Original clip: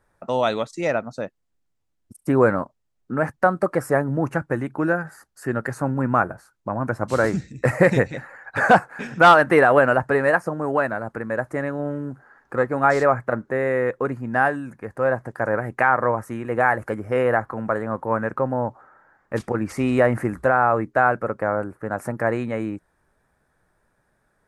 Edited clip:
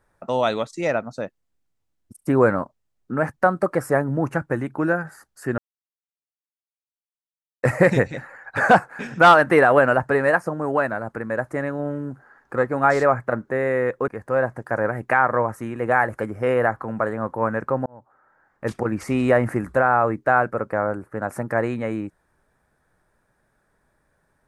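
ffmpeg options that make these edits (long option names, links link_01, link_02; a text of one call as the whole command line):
ffmpeg -i in.wav -filter_complex "[0:a]asplit=5[link_01][link_02][link_03][link_04][link_05];[link_01]atrim=end=5.58,asetpts=PTS-STARTPTS,afade=type=out:start_time=5.576:duration=0.004:curve=hsin[link_06];[link_02]atrim=start=5.58:end=7.63,asetpts=PTS-STARTPTS,volume=0[link_07];[link_03]atrim=start=7.63:end=14.082,asetpts=PTS-STARTPTS,afade=type=in:duration=0.004:curve=hsin[link_08];[link_04]atrim=start=14.768:end=18.55,asetpts=PTS-STARTPTS,afade=type=out:start_time=3.778:duration=0.004:curve=hsin[link_09];[link_05]atrim=start=18.55,asetpts=PTS-STARTPTS,afade=type=in:duration=0.89[link_10];[link_06][link_07][link_08]concat=n=3:v=0:a=1[link_11];[link_09][link_10]concat=n=2:v=0:a=1[link_12];[link_11][link_12]acrossfade=duration=0.004:curve1=hsin:curve2=hsin" out.wav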